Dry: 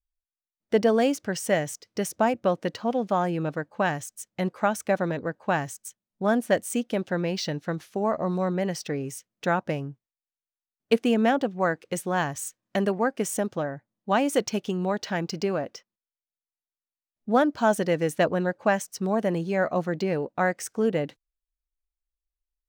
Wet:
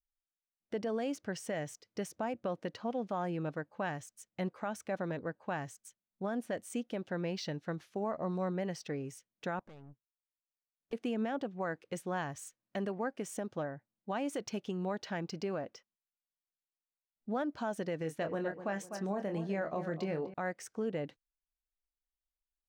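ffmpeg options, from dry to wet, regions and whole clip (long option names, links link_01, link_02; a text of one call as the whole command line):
ffmpeg -i in.wav -filter_complex "[0:a]asettb=1/sr,asplit=3[link_01][link_02][link_03];[link_01]atrim=end=9.594[link_04];[link_02]atrim=start=9.59:end=10.93,asetpts=PTS-STARTPTS,afade=type=in:duration=0.004:curve=qsin,afade=type=out:start_time=1.336:duration=0.004:curve=qsin,acompressor=threshold=-33dB:ratio=4:attack=3.2:release=140:knee=1:detection=peak,aeval=exprs='(tanh(126*val(0)+0.75)-tanh(0.75))/126':channel_layout=same[link_05];[link_03]atrim=start=10.926[link_06];[link_04][link_05]acrossfade=duration=0.004:curve1=hsin:curve2=qsin[link_07];[link_07][link_06]acrossfade=duration=0.004:curve1=qsin:curve2=hsin,asettb=1/sr,asplit=3[link_08][link_09][link_10];[link_08]atrim=end=17.984[link_11];[link_09]atrim=start=17.98:end=20.34,asetpts=PTS-STARTPTS,afade=type=in:duration=0.004:curve=qsin,afade=type=out:start_time=2.356:duration=0.004:curve=qsin,asplit=2[link_12][link_13];[link_13]adelay=25,volume=-8dB[link_14];[link_12][link_14]amix=inputs=2:normalize=0,atrim=end_sample=104076,asplit=2[link_15][link_16];[link_16]adelay=249,lowpass=frequency=2000:poles=1,volume=-13dB,asplit=2[link_17][link_18];[link_18]adelay=249,lowpass=frequency=2000:poles=1,volume=0.39,asplit=2[link_19][link_20];[link_20]adelay=249,lowpass=frequency=2000:poles=1,volume=0.39,asplit=2[link_21][link_22];[link_22]adelay=249,lowpass=frequency=2000:poles=1,volume=0.39[link_23];[link_15][link_17][link_19][link_21][link_23]amix=inputs=5:normalize=0,atrim=end_sample=104076[link_24];[link_10]atrim=start=20.336[link_25];[link_11][link_24]acrossfade=duration=0.004:curve1=hsin:curve2=qsin[link_26];[link_26][link_25]acrossfade=duration=0.004:curve1=qsin:curve2=hsin,highshelf=frequency=7700:gain=-10,alimiter=limit=-18dB:level=0:latency=1:release=99,volume=-8.5dB" out.wav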